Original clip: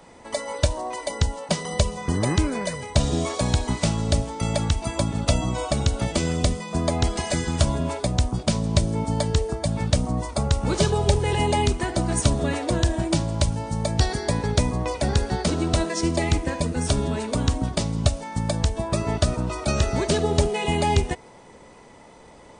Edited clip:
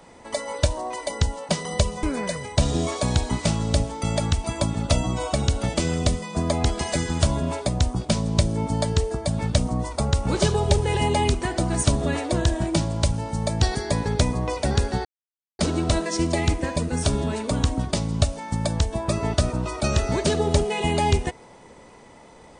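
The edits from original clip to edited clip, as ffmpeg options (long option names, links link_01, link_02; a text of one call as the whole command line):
ffmpeg -i in.wav -filter_complex "[0:a]asplit=3[link_01][link_02][link_03];[link_01]atrim=end=2.032[link_04];[link_02]atrim=start=2.408:end=15.43,asetpts=PTS-STARTPTS,afade=type=out:start_time=13.018:duration=0.004:curve=hsin,apad=pad_dur=0.54[link_05];[link_03]atrim=start=15.43,asetpts=PTS-STARTPTS,afade=type=in:duration=0.004:curve=hsin[link_06];[link_05][link_06]concat=n=2:v=0:a=1[link_07];[link_04][link_07]acrossfade=duration=0.004:curve1=hsin:curve2=hsin" out.wav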